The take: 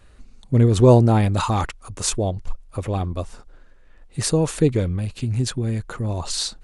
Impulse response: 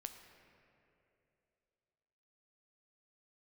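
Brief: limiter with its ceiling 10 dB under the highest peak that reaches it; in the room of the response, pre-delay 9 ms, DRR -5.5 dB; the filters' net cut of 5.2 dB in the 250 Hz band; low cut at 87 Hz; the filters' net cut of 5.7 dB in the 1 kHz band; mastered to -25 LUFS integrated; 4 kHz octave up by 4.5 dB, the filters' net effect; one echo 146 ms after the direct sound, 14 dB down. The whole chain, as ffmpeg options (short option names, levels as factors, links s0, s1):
-filter_complex "[0:a]highpass=87,equalizer=f=250:t=o:g=-6.5,equalizer=f=1000:t=o:g=-7.5,equalizer=f=4000:t=o:g=5.5,alimiter=limit=0.188:level=0:latency=1,aecho=1:1:146:0.2,asplit=2[s0][s1];[1:a]atrim=start_sample=2205,adelay=9[s2];[s1][s2]afir=irnorm=-1:irlink=0,volume=2.99[s3];[s0][s3]amix=inputs=2:normalize=0,volume=0.447"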